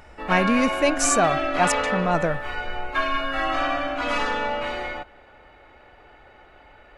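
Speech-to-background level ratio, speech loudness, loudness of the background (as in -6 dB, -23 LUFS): 2.5 dB, -23.0 LUFS, -25.5 LUFS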